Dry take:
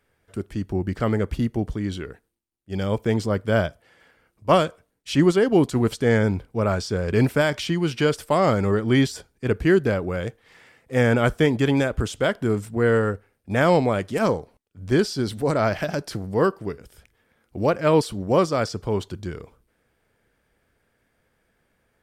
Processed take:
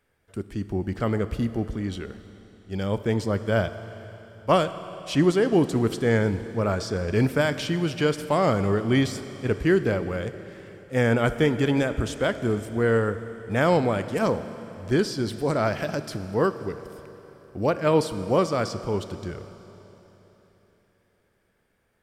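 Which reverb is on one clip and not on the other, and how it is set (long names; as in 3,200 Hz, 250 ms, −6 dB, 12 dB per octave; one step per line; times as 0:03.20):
four-comb reverb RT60 3.7 s, combs from 27 ms, DRR 11.5 dB
level −2.5 dB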